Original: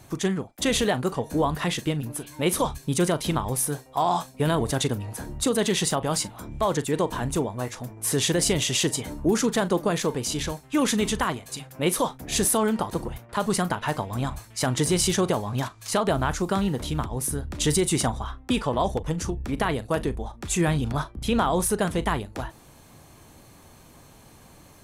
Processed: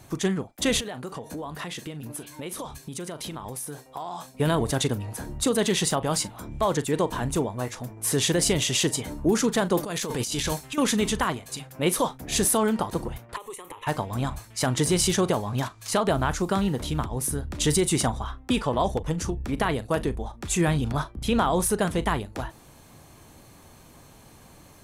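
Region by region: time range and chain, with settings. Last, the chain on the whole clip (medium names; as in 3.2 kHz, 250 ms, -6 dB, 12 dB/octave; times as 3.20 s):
0.80–4.35 s: compression 10:1, threshold -30 dBFS + bass shelf 87 Hz -10.5 dB
9.77–10.78 s: treble shelf 2.1 kHz +8 dB + compressor with a negative ratio -29 dBFS + hard clipper -16 dBFS
13.36–13.87 s: tone controls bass -11 dB, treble +4 dB + compression 16:1, threshold -31 dBFS + static phaser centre 1 kHz, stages 8
whole clip: none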